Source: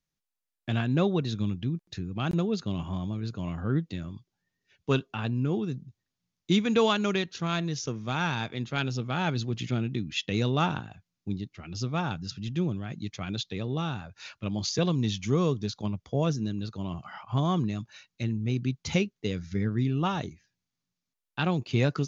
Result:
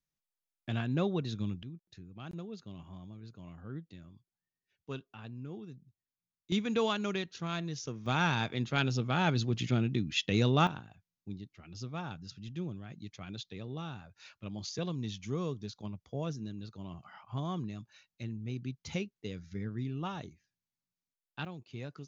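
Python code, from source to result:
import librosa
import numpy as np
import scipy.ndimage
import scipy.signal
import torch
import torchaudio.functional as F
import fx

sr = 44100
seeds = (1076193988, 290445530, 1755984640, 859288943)

y = fx.gain(x, sr, db=fx.steps((0.0, -6.0), (1.63, -15.5), (6.52, -7.0), (8.06, -0.5), (10.67, -10.0), (21.45, -18.0)))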